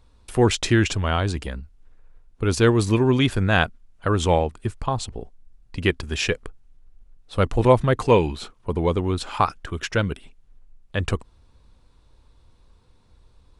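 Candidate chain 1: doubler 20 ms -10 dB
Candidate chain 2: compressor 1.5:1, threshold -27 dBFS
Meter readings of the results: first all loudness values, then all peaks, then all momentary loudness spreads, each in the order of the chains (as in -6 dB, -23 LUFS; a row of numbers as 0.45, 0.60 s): -22.0, -27.0 LUFS; -3.0, -8.5 dBFS; 13, 11 LU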